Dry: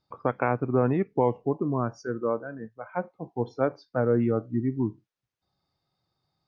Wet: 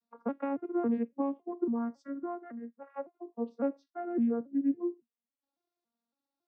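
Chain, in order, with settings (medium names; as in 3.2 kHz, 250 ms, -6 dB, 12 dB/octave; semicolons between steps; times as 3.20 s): vocoder on a broken chord minor triad, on A#3, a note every 278 ms; trim -5.5 dB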